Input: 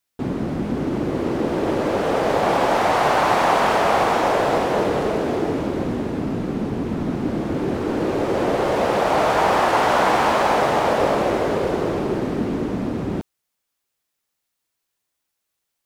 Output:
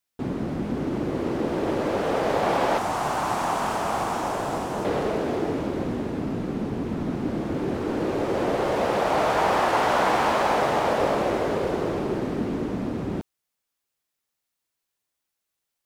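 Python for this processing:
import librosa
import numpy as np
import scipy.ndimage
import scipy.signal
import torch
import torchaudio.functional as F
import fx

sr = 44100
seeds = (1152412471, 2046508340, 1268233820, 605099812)

y = fx.graphic_eq(x, sr, hz=(500, 2000, 4000, 8000), db=(-8, -7, -5, 4), at=(2.78, 4.85))
y = F.gain(torch.from_numpy(y), -4.0).numpy()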